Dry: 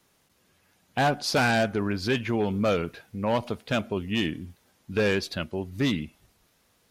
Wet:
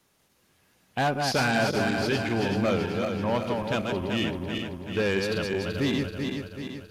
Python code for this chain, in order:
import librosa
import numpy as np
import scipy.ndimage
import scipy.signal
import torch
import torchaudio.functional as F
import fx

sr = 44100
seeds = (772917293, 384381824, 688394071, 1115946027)

y = fx.reverse_delay_fb(x, sr, ms=191, feedback_pct=72, wet_db=-4)
y = 10.0 ** (-12.5 / 20.0) * np.tanh(y / 10.0 ** (-12.5 / 20.0))
y = y * librosa.db_to_amplitude(-1.5)